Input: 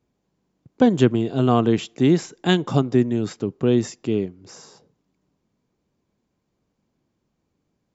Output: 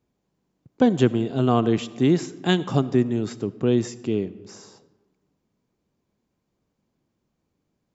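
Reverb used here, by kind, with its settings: digital reverb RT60 1.4 s, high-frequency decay 0.55×, pre-delay 30 ms, DRR 17 dB; gain -2 dB

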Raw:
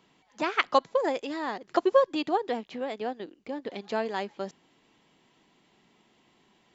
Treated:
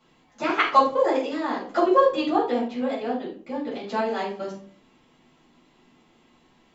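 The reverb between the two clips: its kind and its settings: shoebox room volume 350 m³, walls furnished, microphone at 6.9 m; gain -6.5 dB

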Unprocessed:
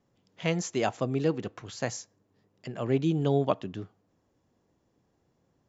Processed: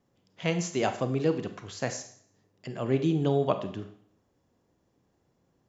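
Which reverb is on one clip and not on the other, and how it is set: Schroeder reverb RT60 0.6 s, combs from 31 ms, DRR 8.5 dB

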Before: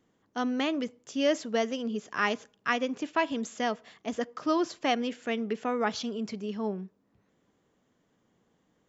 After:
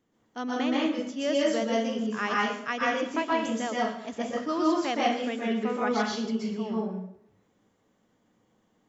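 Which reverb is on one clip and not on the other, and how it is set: plate-style reverb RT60 0.68 s, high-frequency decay 0.75×, pre-delay 0.11 s, DRR -5 dB; gain -4 dB

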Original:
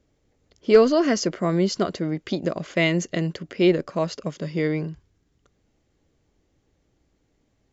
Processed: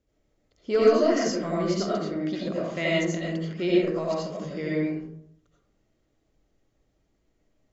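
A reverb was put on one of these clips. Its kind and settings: digital reverb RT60 0.71 s, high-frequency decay 0.45×, pre-delay 45 ms, DRR -6 dB; gain -10 dB

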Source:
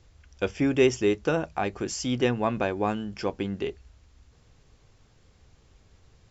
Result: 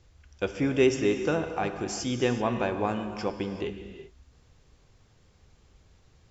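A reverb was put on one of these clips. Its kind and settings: non-linear reverb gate 0.41 s flat, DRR 7 dB; gain -2 dB

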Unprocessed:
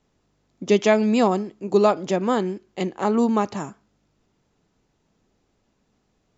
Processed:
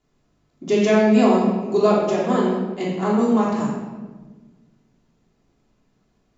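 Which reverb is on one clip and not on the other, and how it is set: shoebox room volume 930 m³, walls mixed, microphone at 3.2 m; gain -5.5 dB

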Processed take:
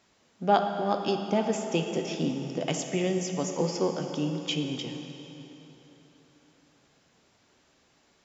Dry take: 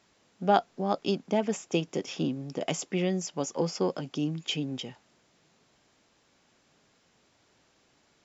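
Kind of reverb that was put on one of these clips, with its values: plate-style reverb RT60 3.6 s, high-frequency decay 0.8×, DRR 4 dB

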